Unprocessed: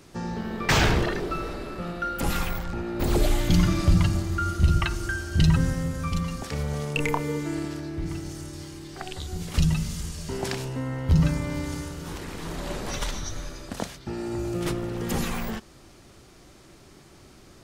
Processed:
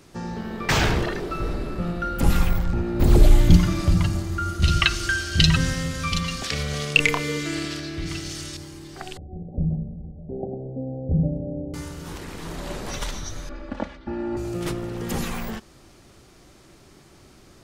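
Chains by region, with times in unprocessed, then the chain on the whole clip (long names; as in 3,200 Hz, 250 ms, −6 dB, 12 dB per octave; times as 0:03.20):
0:01.40–0:03.57: low-shelf EQ 260 Hz +10.5 dB + hard clipping −4.5 dBFS
0:04.62–0:08.57: parametric band 3,600 Hz +14 dB 2.4 octaves + notch filter 890 Hz, Q 5.5
0:09.17–0:11.74: dynamic equaliser 430 Hz, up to +7 dB, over −43 dBFS, Q 1.4 + Chebyshev low-pass with heavy ripple 800 Hz, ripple 6 dB
0:13.49–0:14.37: low-pass filter 2,100 Hz + comb filter 3.5 ms, depth 95%
whole clip: no processing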